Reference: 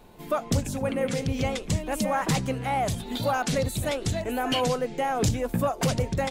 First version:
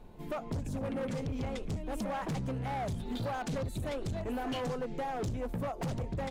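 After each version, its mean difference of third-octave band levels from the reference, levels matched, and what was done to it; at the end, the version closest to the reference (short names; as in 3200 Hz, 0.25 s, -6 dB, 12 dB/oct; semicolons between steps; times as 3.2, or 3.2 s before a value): 4.0 dB: tilt -2 dB/oct; compressor 2.5:1, threshold -24 dBFS, peak gain reduction 7.5 dB; hard clip -25.5 dBFS, distortion -10 dB; gain -6 dB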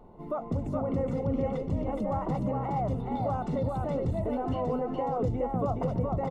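11.0 dB: limiter -22.5 dBFS, peak gain reduction 7 dB; polynomial smoothing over 65 samples; on a send: echo 0.419 s -3 dB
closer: first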